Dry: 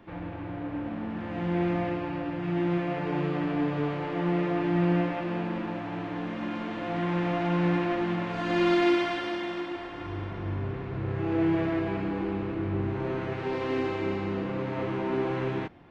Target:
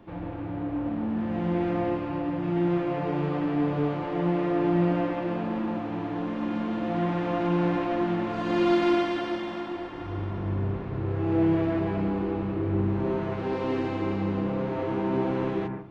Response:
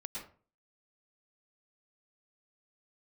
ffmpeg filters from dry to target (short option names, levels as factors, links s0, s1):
-filter_complex "[0:a]asplit=2[s0][s1];[s1]lowpass=1800[s2];[1:a]atrim=start_sample=2205,lowpass=2700[s3];[s2][s3]afir=irnorm=-1:irlink=0,volume=1[s4];[s0][s4]amix=inputs=2:normalize=0,volume=0.841"